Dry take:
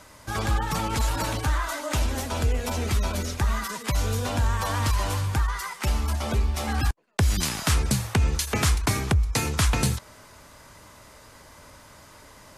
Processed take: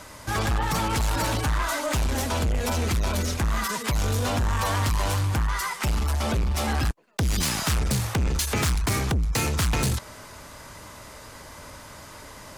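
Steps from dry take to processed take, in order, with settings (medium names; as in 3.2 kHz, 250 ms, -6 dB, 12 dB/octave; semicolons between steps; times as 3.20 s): saturation -26.5 dBFS, distortion -9 dB; trim +6 dB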